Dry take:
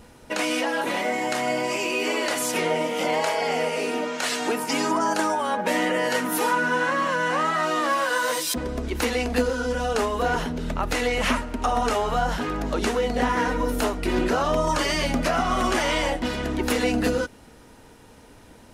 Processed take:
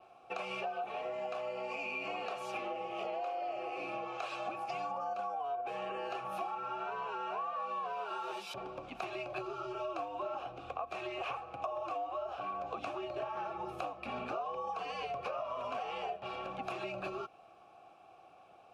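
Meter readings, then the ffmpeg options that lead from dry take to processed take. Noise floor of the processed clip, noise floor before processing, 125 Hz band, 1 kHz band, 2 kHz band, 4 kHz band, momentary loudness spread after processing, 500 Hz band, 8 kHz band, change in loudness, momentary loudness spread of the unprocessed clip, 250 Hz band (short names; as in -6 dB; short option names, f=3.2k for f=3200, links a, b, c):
-59 dBFS, -49 dBFS, -23.0 dB, -12.0 dB, -19.0 dB, -19.5 dB, 4 LU, -14.5 dB, under -30 dB, -15.5 dB, 4 LU, -23.0 dB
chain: -filter_complex "[0:a]adynamicequalizer=threshold=0.00355:dfrequency=8300:dqfactor=2.1:tfrequency=8300:tqfactor=2.1:attack=5:release=100:ratio=0.375:range=2:mode=cutabove:tftype=bell,afreqshift=-120,asplit=3[a][b][c];[a]bandpass=f=730:t=q:w=8,volume=0dB[d];[b]bandpass=f=1.09k:t=q:w=8,volume=-6dB[e];[c]bandpass=f=2.44k:t=q:w=8,volume=-9dB[f];[d][e][f]amix=inputs=3:normalize=0,acompressor=threshold=-40dB:ratio=6,volume=4dB"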